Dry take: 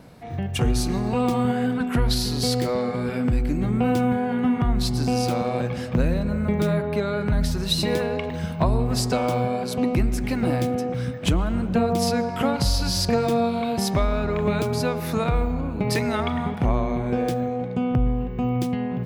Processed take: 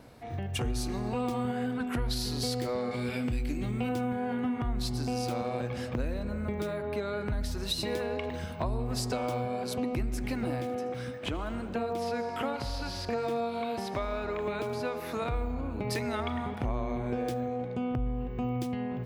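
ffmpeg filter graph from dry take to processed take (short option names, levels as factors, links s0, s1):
-filter_complex "[0:a]asettb=1/sr,asplit=3[s0][s1][s2];[s0]atrim=end=2.914[s3];[s1]atrim=start=2.91:end=3.89,asetpts=PTS-STARTPTS,afade=t=in:d=0.004:c=qsin,afade=t=out:st=0.976:d=0.004:c=qsin,highshelf=f=2000:t=q:w=1.5:g=6,asplit=2[s4][s5];[s5]adelay=25,volume=0.237[s6];[s4][s6]amix=inputs=2:normalize=0,atrim=end_sample=43218[s7];[s2]atrim=start=3.886[s8];[s3][s7]acrossfade=d=0.004:c1=hsin:c2=qsin[s9];[s9][s8]acrossfade=d=0.004:c1=qsin:c2=hsin,asettb=1/sr,asplit=3[s10][s11][s12];[s10]atrim=end=10.614[s13];[s11]atrim=start=10.61:end=15.22,asetpts=PTS-STARTPTS,afade=t=in:d=0.004:c=qsin,afade=t=out:st=4.606:d=0.004:c=qsin,acrossover=split=3300[s14][s15];[s15]acompressor=threshold=0.00631:ratio=4:attack=1:release=60[s16];[s14][s16]amix=inputs=2:normalize=0,lowshelf=f=190:g=-10,aecho=1:1:79:0.15,atrim=end_sample=203301[s17];[s12]atrim=start=15.216[s18];[s13][s17]acrossfade=d=0.004:c1=hsin:c2=qsin[s19];[s19][s18]acrossfade=d=0.004:c1=qsin:c2=hsin,acompressor=threshold=0.0562:ratio=2.5,equalizer=f=170:t=o:w=0.28:g=-13.5,volume=0.631"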